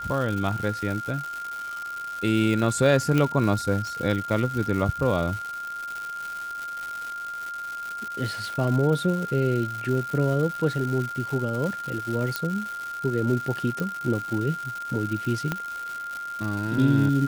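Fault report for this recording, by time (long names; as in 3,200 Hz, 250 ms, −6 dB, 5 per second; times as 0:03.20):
surface crackle 320 per second −30 dBFS
whistle 1,400 Hz −31 dBFS
0:03.18: click −11 dBFS
0:12.36: click −9 dBFS
0:13.80: click −16 dBFS
0:15.52: click −12 dBFS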